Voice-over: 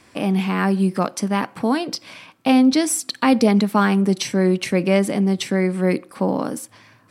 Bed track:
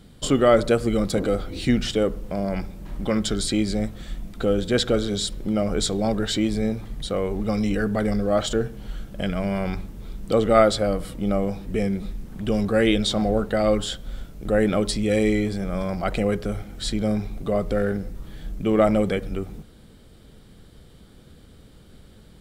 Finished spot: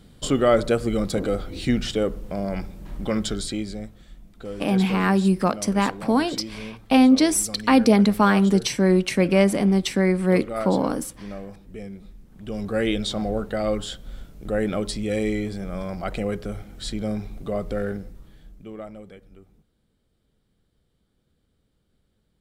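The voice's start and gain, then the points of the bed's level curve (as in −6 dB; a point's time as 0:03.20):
4.45 s, −0.5 dB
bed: 0:03.24 −1.5 dB
0:04.07 −13 dB
0:12.28 −13 dB
0:12.76 −4 dB
0:17.92 −4 dB
0:18.92 −21 dB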